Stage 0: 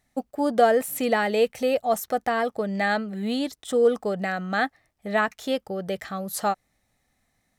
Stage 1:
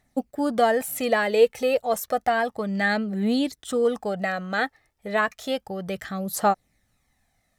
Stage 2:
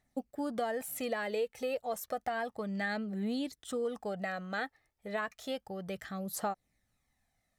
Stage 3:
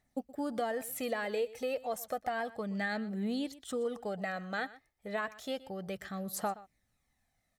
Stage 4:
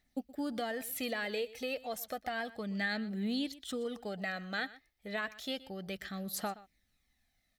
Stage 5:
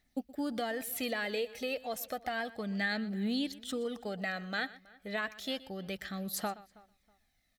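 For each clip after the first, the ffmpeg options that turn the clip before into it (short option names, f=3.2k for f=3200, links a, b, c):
-af "aphaser=in_gain=1:out_gain=1:delay=2.4:decay=0.42:speed=0.31:type=triangular"
-af "acompressor=threshold=-22dB:ratio=4,volume=-9dB"
-af "aecho=1:1:122:0.119"
-af "equalizer=f=125:t=o:w=1:g=-9,equalizer=f=500:t=o:w=1:g=-6,equalizer=f=1k:t=o:w=1:g=-8,equalizer=f=4k:t=o:w=1:g=4,equalizer=f=8k:t=o:w=1:g=-6,volume=3.5dB"
-filter_complex "[0:a]asplit=2[a][b];[b]adelay=322,lowpass=f=2.5k:p=1,volume=-23dB,asplit=2[c][d];[d]adelay=322,lowpass=f=2.5k:p=1,volume=0.27[e];[a][c][e]amix=inputs=3:normalize=0,volume=1.5dB"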